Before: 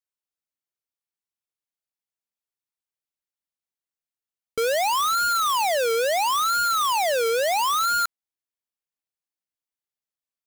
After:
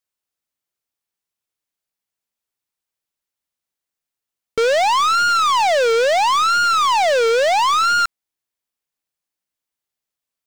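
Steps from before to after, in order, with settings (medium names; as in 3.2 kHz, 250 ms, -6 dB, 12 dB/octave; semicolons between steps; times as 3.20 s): tracing distortion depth 0.02 ms; slew-rate limiter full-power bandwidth 310 Hz; trim +7 dB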